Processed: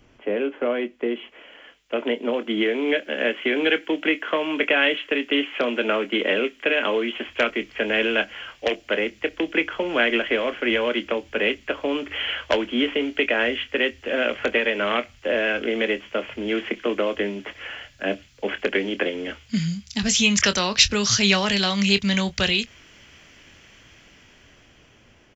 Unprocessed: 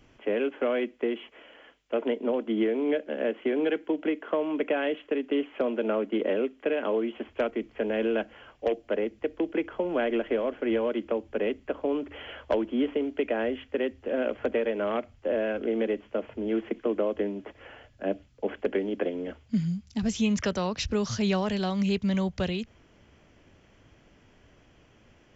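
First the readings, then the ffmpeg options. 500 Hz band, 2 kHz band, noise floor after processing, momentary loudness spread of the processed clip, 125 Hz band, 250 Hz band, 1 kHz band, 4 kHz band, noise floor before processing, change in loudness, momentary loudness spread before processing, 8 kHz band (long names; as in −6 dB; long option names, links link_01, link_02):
+3.0 dB, +15.0 dB, −54 dBFS, 10 LU, +3.0 dB, +3.0 dB, +6.5 dB, +17.0 dB, −60 dBFS, +6.5 dB, 6 LU, can't be measured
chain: -filter_complex "[0:a]asplit=2[link_01][link_02];[link_02]adelay=25,volume=-11.5dB[link_03];[link_01][link_03]amix=inputs=2:normalize=0,acrossover=split=1600[link_04][link_05];[link_05]dynaudnorm=framelen=650:gausssize=7:maxgain=15.5dB[link_06];[link_04][link_06]amix=inputs=2:normalize=0,volume=2.5dB"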